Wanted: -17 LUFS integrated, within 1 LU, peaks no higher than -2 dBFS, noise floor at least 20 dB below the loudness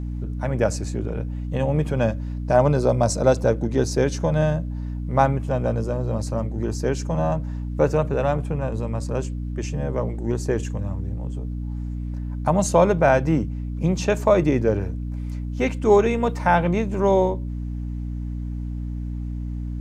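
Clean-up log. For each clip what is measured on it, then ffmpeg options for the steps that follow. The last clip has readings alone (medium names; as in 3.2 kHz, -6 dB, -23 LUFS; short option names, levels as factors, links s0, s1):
hum 60 Hz; highest harmonic 300 Hz; hum level -26 dBFS; loudness -23.0 LUFS; peak level -3.5 dBFS; loudness target -17.0 LUFS
-> -af "bandreject=f=60:t=h:w=4,bandreject=f=120:t=h:w=4,bandreject=f=180:t=h:w=4,bandreject=f=240:t=h:w=4,bandreject=f=300:t=h:w=4"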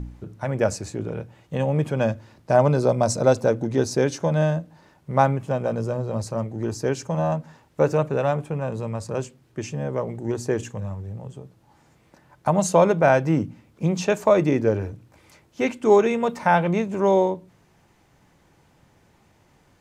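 hum not found; loudness -23.0 LUFS; peak level -3.5 dBFS; loudness target -17.0 LUFS
-> -af "volume=2,alimiter=limit=0.794:level=0:latency=1"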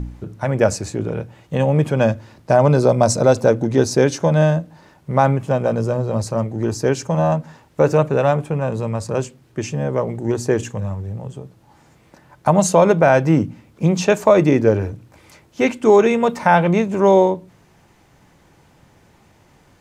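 loudness -17.5 LUFS; peak level -2.0 dBFS; noise floor -54 dBFS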